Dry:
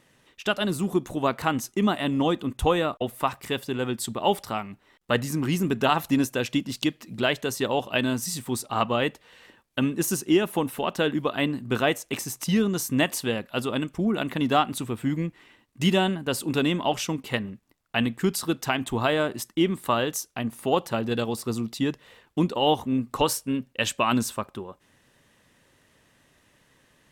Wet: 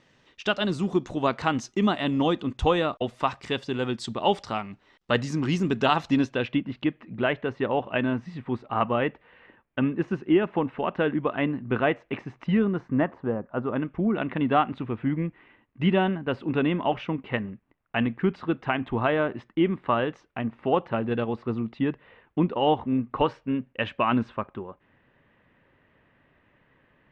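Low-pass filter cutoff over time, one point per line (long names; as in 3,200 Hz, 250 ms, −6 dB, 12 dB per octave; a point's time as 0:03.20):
low-pass filter 24 dB per octave
0:06.02 6,000 Hz
0:06.67 2,400 Hz
0:12.57 2,400 Hz
0:13.39 1,200 Hz
0:13.97 2,500 Hz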